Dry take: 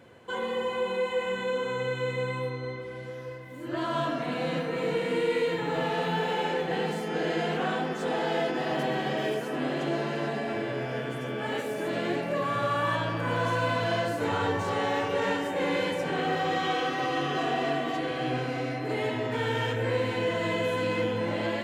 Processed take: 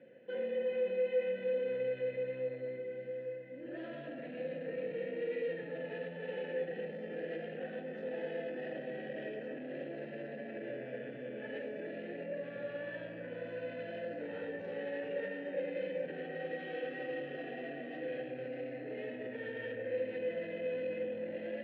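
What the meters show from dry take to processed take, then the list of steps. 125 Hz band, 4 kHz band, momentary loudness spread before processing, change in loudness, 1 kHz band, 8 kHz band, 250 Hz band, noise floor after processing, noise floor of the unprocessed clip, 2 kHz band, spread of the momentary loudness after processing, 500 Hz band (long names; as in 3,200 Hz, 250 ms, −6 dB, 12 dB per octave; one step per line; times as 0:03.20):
−19.0 dB, −20.5 dB, 4 LU, −10.5 dB, −23.5 dB, below −30 dB, −13.0 dB, −46 dBFS, −37 dBFS, −13.5 dB, 8 LU, −7.5 dB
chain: high-pass filter 130 Hz 24 dB per octave
low shelf with overshoot 320 Hz +10.5 dB, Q 1.5
brickwall limiter −21 dBFS, peak gain reduction 9 dB
soft clipping −25.5 dBFS, distortion −16 dB
formant filter e
high-frequency loss of the air 220 metres
level +5 dB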